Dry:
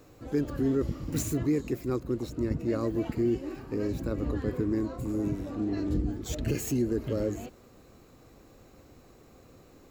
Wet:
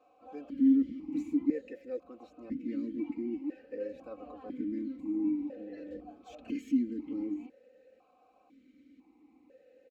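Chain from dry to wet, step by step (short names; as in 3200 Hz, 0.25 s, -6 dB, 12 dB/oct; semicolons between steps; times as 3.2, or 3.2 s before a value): comb 3.9 ms, depth 94%; vowel sequencer 2 Hz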